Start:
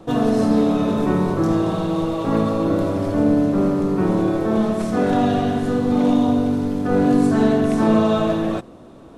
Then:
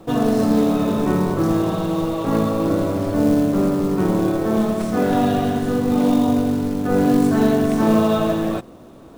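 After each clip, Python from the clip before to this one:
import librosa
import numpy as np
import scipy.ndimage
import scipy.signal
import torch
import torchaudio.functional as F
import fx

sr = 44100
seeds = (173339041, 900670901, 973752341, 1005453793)

y = fx.quant_companded(x, sr, bits=6)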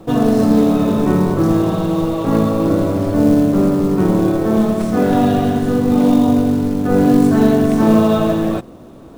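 y = fx.low_shelf(x, sr, hz=480.0, db=4.0)
y = y * 10.0 ** (1.5 / 20.0)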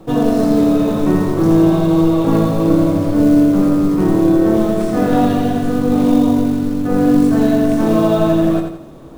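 y = fx.rider(x, sr, range_db=10, speed_s=2.0)
y = fx.echo_feedback(y, sr, ms=85, feedback_pct=40, wet_db=-6.5)
y = fx.room_shoebox(y, sr, seeds[0], volume_m3=130.0, walls='furnished', distance_m=0.53)
y = y * 10.0 ** (-2.0 / 20.0)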